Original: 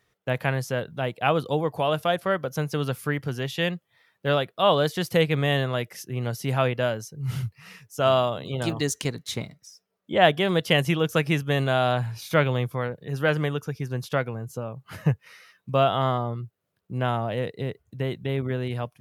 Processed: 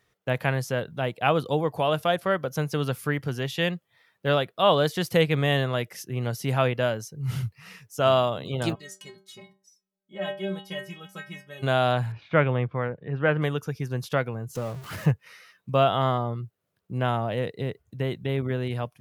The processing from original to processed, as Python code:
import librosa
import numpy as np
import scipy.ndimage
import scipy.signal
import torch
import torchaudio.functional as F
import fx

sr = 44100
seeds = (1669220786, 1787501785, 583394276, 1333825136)

y = fx.stiff_resonator(x, sr, f0_hz=190.0, decay_s=0.4, stiffness=0.008, at=(8.74, 11.62), fade=0.02)
y = fx.lowpass(y, sr, hz=2600.0, slope=24, at=(12.12, 13.42))
y = fx.zero_step(y, sr, step_db=-37.0, at=(14.55, 15.11))